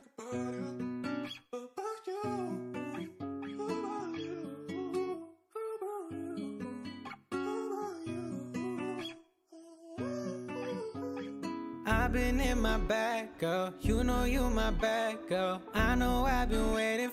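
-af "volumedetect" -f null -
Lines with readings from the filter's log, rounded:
mean_volume: -34.6 dB
max_volume: -15.1 dB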